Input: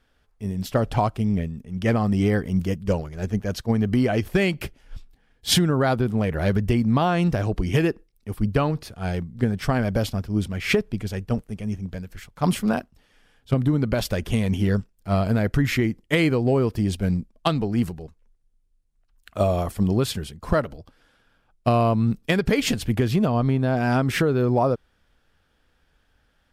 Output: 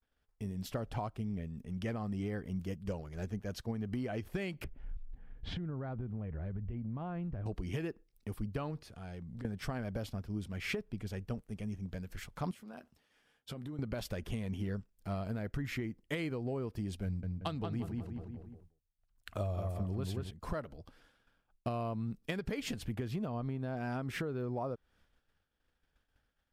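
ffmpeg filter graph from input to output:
-filter_complex "[0:a]asettb=1/sr,asplit=3[a][b][c];[a]atrim=end=4.644[d];[b]atrim=start=4.64:end=7.46,asetpts=PTS-STARTPTS,afade=t=in:d=0.004:c=qsin,afade=t=out:st=2.816:d=0.004:c=qsin,lowpass=2.4k,aemphasis=mode=reproduction:type=bsi,acompressor=threshold=-33dB:ratio=2.5:attack=3.2:release=140:knee=1:detection=peak[e];[c]atrim=start=7.456[f];[d][e]acrossfade=d=0.004:c1=hsin:c2=qsin[g];[g][f]acrossfade=d=0.004:c1=qsin:c2=hsin,asettb=1/sr,asplit=3[h][i][j];[h]atrim=end=8.774[k];[i]atrim=start=8.77:end=9.45,asetpts=PTS-STARTPTS,afade=t=in:d=0.004:c=qsin,afade=t=out:st=0.676:d=0.004:c=qsin,lowpass=12k,acompressor=threshold=-40dB:ratio=8:attack=3.2:release=140:knee=1:detection=peak[l];[j]atrim=start=9.446[m];[k][l]acrossfade=d=0.004:c1=hsin:c2=qsin[n];[n][m]acrossfade=d=0.004:c1=qsin:c2=hsin,asettb=1/sr,asplit=3[o][p][q];[o]atrim=end=12.514[r];[p]atrim=start=12.51:end=13.79,asetpts=PTS-STARTPTS,afade=t=in:d=0.004:c=qsin,afade=t=out:st=1.276:d=0.004:c=qsin,highpass=f=200:p=1,acompressor=threshold=-38dB:ratio=6:attack=3.2:release=140:knee=1:detection=peak,asplit=2[s][t];[t]adelay=13,volume=-12dB[u];[s][u]amix=inputs=2:normalize=0,atrim=end_sample=56448[v];[q]atrim=start=13.786[w];[r][v]acrossfade=d=0.004:c1=hsin:c2=qsin[x];[x][w]acrossfade=d=0.004:c1=qsin:c2=hsin,asettb=1/sr,asplit=3[y][z][aa];[y]atrim=end=17.054[ab];[z]atrim=start=17.05:end=20.31,asetpts=PTS-STARTPTS,afade=t=in:d=0.004:c=qsin,afade=t=out:st=3.256:d=0.004:c=qsin,equalizer=f=95:w=4.4:g=10,asplit=2[ac][ad];[ad]adelay=180,lowpass=f=2.6k:p=1,volume=-4dB,asplit=2[ae][af];[af]adelay=180,lowpass=f=2.6k:p=1,volume=0.35,asplit=2[ag][ah];[ah]adelay=180,lowpass=f=2.6k:p=1,volume=0.35,asplit=2[ai][aj];[aj]adelay=180,lowpass=f=2.6k:p=1,volume=0.35[ak];[ac][ae][ag][ai][ak]amix=inputs=5:normalize=0,atrim=end_sample=143766[al];[aa]atrim=start=20.306[am];[ab][al]acrossfade=d=0.004:c1=hsin:c2=qsin[an];[an][am]acrossfade=d=0.004:c1=qsin:c2=hsin,agate=range=-33dB:threshold=-54dB:ratio=3:detection=peak,acompressor=threshold=-39dB:ratio=3,adynamicequalizer=threshold=0.002:dfrequency=2800:dqfactor=0.7:tfrequency=2800:tqfactor=0.7:attack=5:release=100:ratio=0.375:range=2:mode=cutabove:tftype=highshelf,volume=-1dB"

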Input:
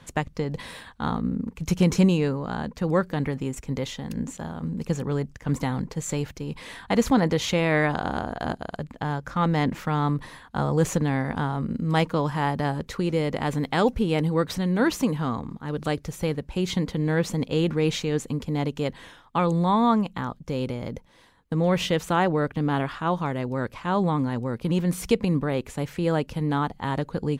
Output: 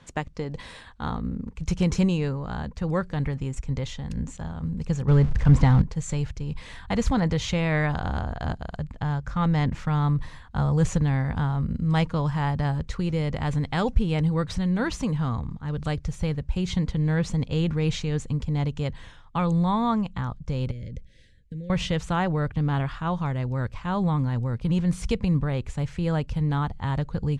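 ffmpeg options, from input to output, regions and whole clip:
-filter_complex "[0:a]asettb=1/sr,asplit=3[a][b][c];[a]atrim=end=5.084[d];[b]atrim=start=5.08:end=5.82,asetpts=PTS-STARTPTS,afade=t=in:d=0.004:c=qsin,afade=t=out:st=0.736:d=0.004:c=qsin,aeval=exprs='val(0)+0.5*0.015*sgn(val(0))':c=same,aemphasis=mode=reproduction:type=50fm,acontrast=75[e];[c]atrim=start=5.816[f];[d][e]acrossfade=d=0.004:c1=hsin:c2=qsin[g];[g][f]acrossfade=d=0.004:c1=qsin:c2=hsin,asettb=1/sr,asplit=3[h][i][j];[h]atrim=end=20.714[k];[i]atrim=start=20.71:end=21.7,asetpts=PTS-STARTPTS,afade=t=in:d=0.004:c=qsin,afade=t=out:st=0.986:d=0.004:c=qsin,acompressor=threshold=-34dB:ratio=4:attack=3.2:release=140:knee=1:detection=peak,asuperstop=centerf=980:order=12:qfactor=0.93[l];[j]atrim=start=21.696[m];[k][l]acrossfade=d=0.004:c1=hsin:c2=qsin[n];[n][m]acrossfade=d=0.004:c1=qsin:c2=hsin,lowpass=f=8.8k:w=0.5412,lowpass=f=8.8k:w=1.3066,asubboost=boost=7:cutoff=110,volume=-3dB"

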